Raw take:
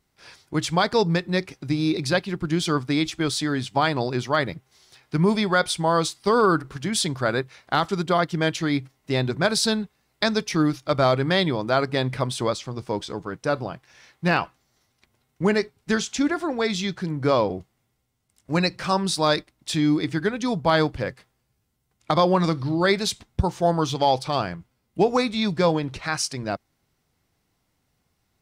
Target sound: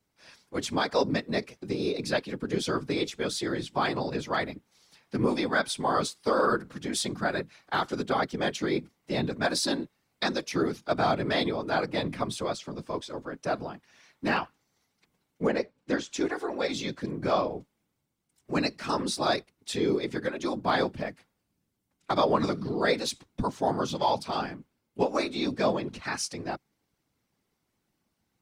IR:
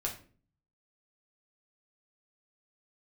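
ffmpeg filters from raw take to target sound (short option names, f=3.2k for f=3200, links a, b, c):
-filter_complex "[0:a]afreqshift=65,asettb=1/sr,asplit=3[a][b][c];[a]atrim=end=15.474[d];[b]atrim=start=15.47:end=16.12,asetpts=PTS-STARTPTS,afade=t=in:d=0.004:c=qsin,afade=t=out:st=0.646:d=0.004:c=qsin,aemphasis=mode=reproduction:type=50kf[e];[c]atrim=start=16.116[f];[d][e]acrossfade=d=0.004:c1=hsin:c2=qsin[g];[g][f]acrossfade=d=0.004:c1=qsin:c2=hsin,afftfilt=real='hypot(re,im)*cos(2*PI*random(0))':imag='hypot(re,im)*sin(2*PI*random(1))':win_size=512:overlap=0.75"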